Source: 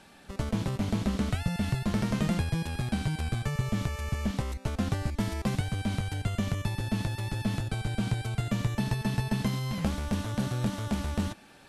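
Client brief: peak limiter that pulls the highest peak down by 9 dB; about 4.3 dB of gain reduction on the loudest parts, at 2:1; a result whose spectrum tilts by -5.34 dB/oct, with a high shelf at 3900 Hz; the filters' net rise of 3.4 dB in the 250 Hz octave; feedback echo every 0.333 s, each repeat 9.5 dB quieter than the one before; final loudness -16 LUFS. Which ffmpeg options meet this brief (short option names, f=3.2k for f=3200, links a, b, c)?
-af "equalizer=f=250:t=o:g=4.5,highshelf=f=3.9k:g=7,acompressor=threshold=-29dB:ratio=2,alimiter=level_in=1dB:limit=-24dB:level=0:latency=1,volume=-1dB,aecho=1:1:333|666|999|1332:0.335|0.111|0.0365|0.012,volume=18.5dB"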